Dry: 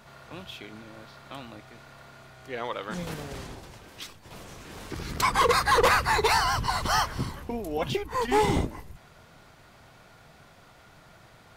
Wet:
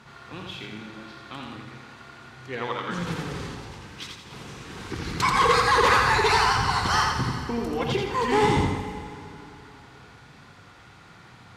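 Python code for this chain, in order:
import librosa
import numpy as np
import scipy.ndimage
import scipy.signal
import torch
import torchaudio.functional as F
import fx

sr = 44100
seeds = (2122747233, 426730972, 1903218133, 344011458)

p1 = scipy.signal.sosfilt(scipy.signal.butter(2, 59.0, 'highpass', fs=sr, output='sos'), x)
p2 = fx.peak_eq(p1, sr, hz=620.0, db=-12.0, octaves=0.37)
p3 = np.clip(p2, -10.0 ** (-27.0 / 20.0), 10.0 ** (-27.0 / 20.0))
p4 = p2 + (p3 * librosa.db_to_amplitude(-5.5))
p5 = fx.air_absorb(p4, sr, metres=52.0)
p6 = p5 + fx.echo_feedback(p5, sr, ms=85, feedback_pct=43, wet_db=-4.0, dry=0)
y = fx.rev_plate(p6, sr, seeds[0], rt60_s=3.1, hf_ratio=0.9, predelay_ms=0, drr_db=9.0)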